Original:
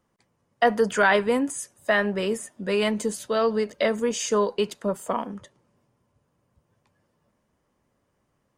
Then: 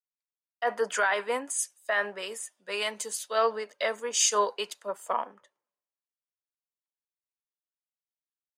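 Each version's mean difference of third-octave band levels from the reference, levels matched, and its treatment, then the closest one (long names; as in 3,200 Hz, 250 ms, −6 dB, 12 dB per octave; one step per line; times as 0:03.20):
6.0 dB: high-pass filter 680 Hz 12 dB per octave
brickwall limiter −17.5 dBFS, peak gain reduction 9 dB
multiband upward and downward expander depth 100%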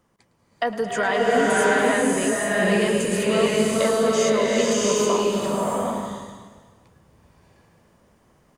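12.0 dB: downward compressor 2 to 1, threshold −36 dBFS, peak gain reduction 11.5 dB
on a send: echo with shifted repeats 108 ms, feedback 36%, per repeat −50 Hz, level −16.5 dB
on the sum: slow-attack reverb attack 730 ms, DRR −6 dB
level +6 dB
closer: first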